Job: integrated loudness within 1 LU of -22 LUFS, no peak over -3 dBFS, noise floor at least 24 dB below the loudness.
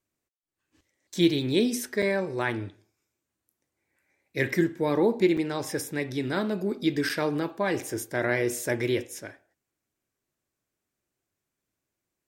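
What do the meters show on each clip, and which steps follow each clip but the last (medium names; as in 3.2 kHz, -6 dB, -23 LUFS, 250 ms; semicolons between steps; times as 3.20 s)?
dropouts 3; longest dropout 5.7 ms; loudness -27.0 LUFS; peak level -10.0 dBFS; loudness target -22.0 LUFS
-> interpolate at 2.02/5.37/7.09 s, 5.7 ms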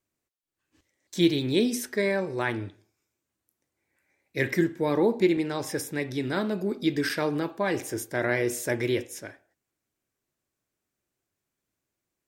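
dropouts 0; loudness -27.0 LUFS; peak level -10.0 dBFS; loudness target -22.0 LUFS
-> trim +5 dB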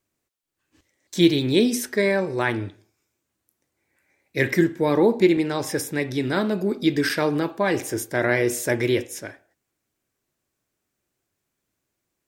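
loudness -22.0 LUFS; peak level -5.0 dBFS; noise floor -80 dBFS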